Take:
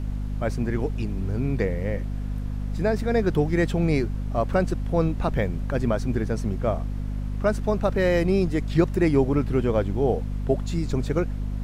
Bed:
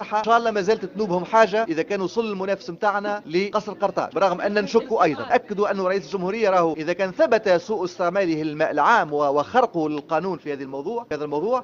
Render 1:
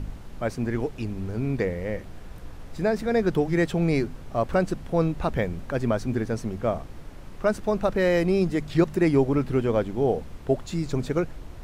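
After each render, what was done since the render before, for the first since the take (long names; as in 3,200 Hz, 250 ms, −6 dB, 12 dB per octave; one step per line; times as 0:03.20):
hum removal 50 Hz, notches 5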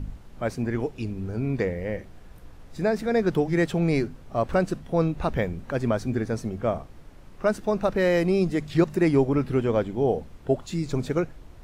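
noise reduction from a noise print 6 dB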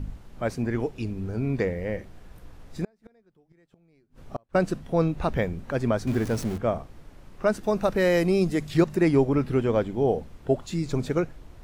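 0:02.84–0:04.55: gate with flip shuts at −20 dBFS, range −39 dB
0:06.07–0:06.58: converter with a step at zero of −32.5 dBFS
0:07.63–0:08.83: high-shelf EQ 7,400 Hz +8.5 dB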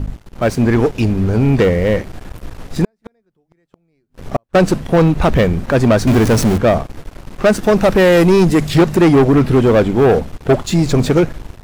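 automatic gain control gain up to 5.5 dB
leveller curve on the samples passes 3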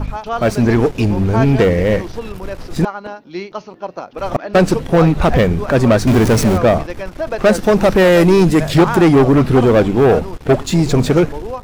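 mix in bed −4.5 dB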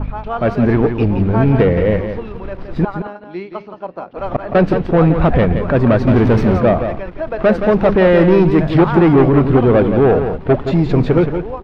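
high-frequency loss of the air 360 metres
single-tap delay 171 ms −8 dB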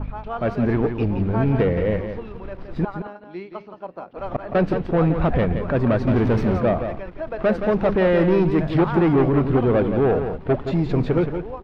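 level −7 dB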